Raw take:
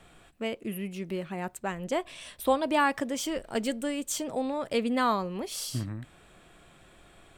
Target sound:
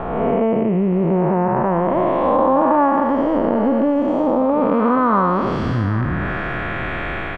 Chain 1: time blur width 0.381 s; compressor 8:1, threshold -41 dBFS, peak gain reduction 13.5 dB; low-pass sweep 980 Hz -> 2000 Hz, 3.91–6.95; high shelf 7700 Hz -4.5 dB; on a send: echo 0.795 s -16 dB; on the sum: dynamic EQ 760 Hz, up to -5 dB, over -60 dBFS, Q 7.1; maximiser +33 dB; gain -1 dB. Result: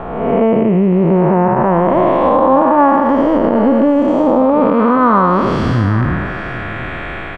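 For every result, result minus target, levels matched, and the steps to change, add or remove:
compressor: peak gain reduction -5.5 dB; 8000 Hz band +3.0 dB
change: compressor 8:1, threshold -47.5 dBFS, peak gain reduction 19 dB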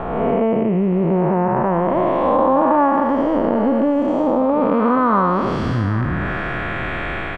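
8000 Hz band +3.5 dB
change: high shelf 7700 Hz -13 dB

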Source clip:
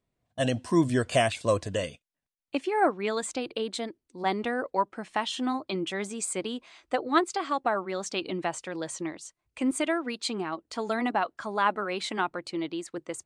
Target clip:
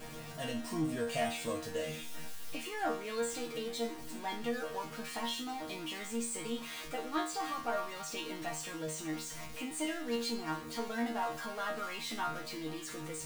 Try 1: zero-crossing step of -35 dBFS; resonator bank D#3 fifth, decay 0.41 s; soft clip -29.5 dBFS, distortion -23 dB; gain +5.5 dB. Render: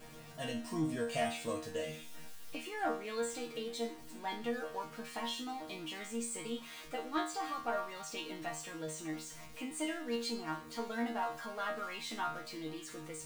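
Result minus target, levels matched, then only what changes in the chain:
zero-crossing step: distortion -5 dB
change: zero-crossing step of -28.5 dBFS

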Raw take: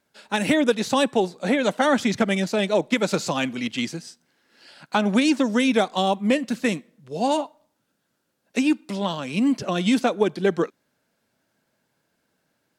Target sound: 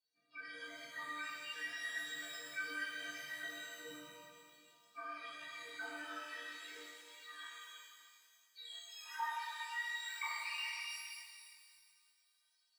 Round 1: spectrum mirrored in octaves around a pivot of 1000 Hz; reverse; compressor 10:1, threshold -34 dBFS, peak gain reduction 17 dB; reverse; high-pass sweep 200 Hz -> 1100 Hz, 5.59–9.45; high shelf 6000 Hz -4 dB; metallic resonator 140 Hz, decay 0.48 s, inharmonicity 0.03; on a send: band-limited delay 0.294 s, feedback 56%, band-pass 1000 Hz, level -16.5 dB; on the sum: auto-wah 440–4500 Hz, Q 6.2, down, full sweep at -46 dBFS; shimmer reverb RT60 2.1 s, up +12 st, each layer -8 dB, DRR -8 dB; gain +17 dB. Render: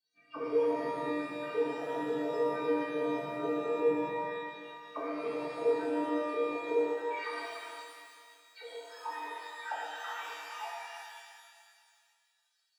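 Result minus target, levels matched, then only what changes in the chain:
compressor: peak gain reduction -9 dB
change: compressor 10:1, threshold -44 dBFS, peak gain reduction 26 dB

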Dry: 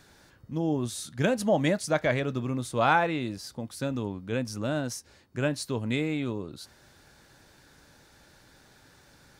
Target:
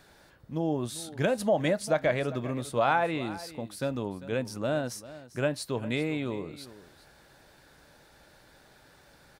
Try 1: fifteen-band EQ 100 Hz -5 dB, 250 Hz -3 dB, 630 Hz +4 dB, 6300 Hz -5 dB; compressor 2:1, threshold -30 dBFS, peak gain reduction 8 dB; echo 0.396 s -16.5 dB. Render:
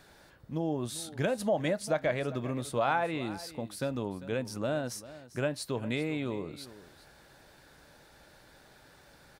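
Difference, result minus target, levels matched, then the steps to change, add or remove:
compressor: peak gain reduction +3.5 dB
change: compressor 2:1, threshold -23 dBFS, peak gain reduction 4.5 dB

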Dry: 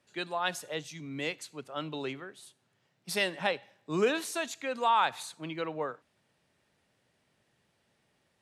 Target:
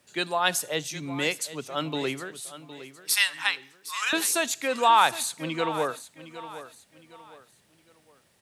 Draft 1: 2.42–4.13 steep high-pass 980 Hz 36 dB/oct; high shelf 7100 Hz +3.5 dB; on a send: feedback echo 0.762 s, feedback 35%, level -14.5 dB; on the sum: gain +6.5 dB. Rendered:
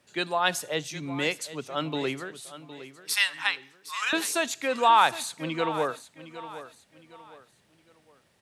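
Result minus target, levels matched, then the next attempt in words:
8000 Hz band -4.0 dB
2.42–4.13 steep high-pass 980 Hz 36 dB/oct; high shelf 7100 Hz +12.5 dB; on a send: feedback echo 0.762 s, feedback 35%, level -14.5 dB; on the sum: gain +6.5 dB

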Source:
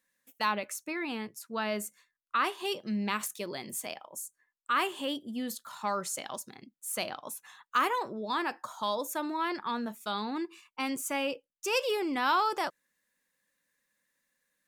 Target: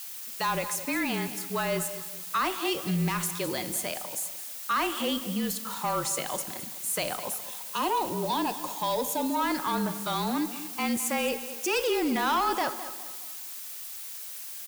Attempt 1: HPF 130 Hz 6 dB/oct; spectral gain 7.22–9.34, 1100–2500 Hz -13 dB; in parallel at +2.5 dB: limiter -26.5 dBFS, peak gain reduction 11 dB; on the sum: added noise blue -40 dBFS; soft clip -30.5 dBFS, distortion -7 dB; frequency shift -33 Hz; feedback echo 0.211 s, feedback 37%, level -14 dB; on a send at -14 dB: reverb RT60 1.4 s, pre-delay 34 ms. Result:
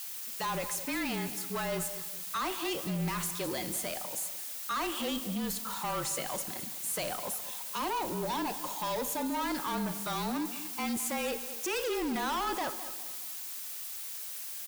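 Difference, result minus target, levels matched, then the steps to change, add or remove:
soft clip: distortion +9 dB
change: soft clip -20.5 dBFS, distortion -16 dB

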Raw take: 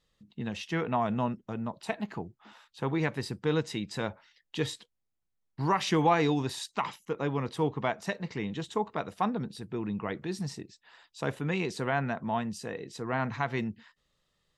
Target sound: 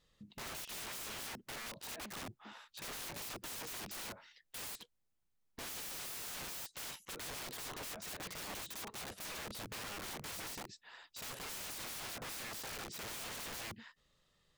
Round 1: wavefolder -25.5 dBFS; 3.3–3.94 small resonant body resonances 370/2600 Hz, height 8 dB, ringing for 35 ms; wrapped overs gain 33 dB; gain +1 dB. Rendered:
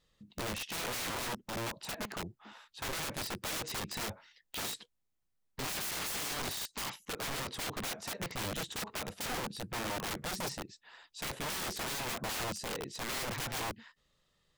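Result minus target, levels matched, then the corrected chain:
wrapped overs: distortion -9 dB
wavefolder -25.5 dBFS; 3.3–3.94 small resonant body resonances 370/2600 Hz, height 8 dB, ringing for 35 ms; wrapped overs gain 41 dB; gain +1 dB

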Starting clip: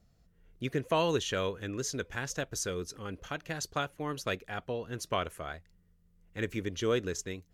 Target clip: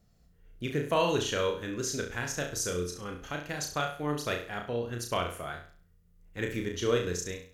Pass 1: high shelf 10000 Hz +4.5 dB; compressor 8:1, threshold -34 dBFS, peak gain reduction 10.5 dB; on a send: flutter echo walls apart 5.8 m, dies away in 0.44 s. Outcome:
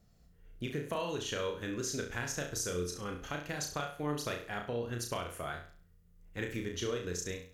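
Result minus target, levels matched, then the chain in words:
compressor: peak gain reduction +10.5 dB
high shelf 10000 Hz +4.5 dB; on a send: flutter echo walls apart 5.8 m, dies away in 0.44 s

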